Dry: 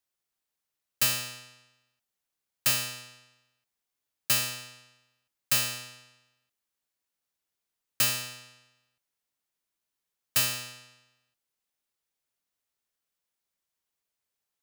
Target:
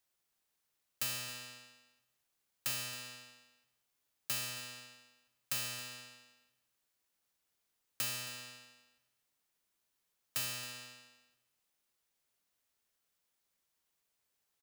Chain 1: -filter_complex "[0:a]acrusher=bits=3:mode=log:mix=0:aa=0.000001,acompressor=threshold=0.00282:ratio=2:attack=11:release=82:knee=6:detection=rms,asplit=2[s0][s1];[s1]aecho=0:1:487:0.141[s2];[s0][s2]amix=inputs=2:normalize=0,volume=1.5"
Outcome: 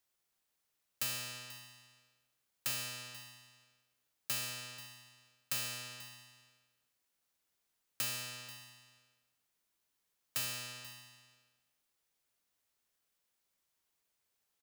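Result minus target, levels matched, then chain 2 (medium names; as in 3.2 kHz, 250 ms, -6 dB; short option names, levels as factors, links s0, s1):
echo 216 ms late
-filter_complex "[0:a]acrusher=bits=3:mode=log:mix=0:aa=0.000001,acompressor=threshold=0.00282:ratio=2:attack=11:release=82:knee=6:detection=rms,asplit=2[s0][s1];[s1]aecho=0:1:271:0.141[s2];[s0][s2]amix=inputs=2:normalize=0,volume=1.5"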